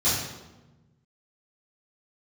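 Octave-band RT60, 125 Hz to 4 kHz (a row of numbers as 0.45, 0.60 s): 1.9, 1.6, 1.2, 1.0, 0.85, 0.75 s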